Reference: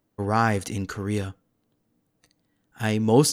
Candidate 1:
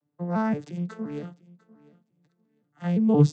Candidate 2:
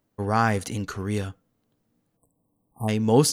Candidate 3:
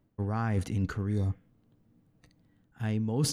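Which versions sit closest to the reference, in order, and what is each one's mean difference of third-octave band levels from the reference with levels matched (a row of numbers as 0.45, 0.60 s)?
2, 3, 1; 1.0, 5.5, 11.5 dB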